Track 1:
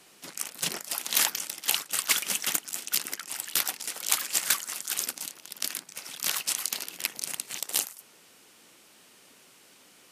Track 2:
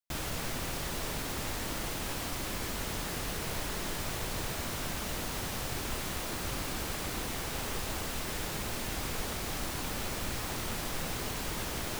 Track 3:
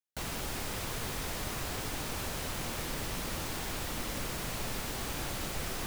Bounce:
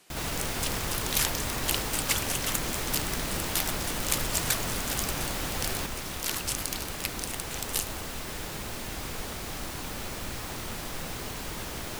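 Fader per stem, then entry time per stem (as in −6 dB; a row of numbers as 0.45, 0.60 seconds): −3.5, −0.5, +3.0 decibels; 0.00, 0.00, 0.00 seconds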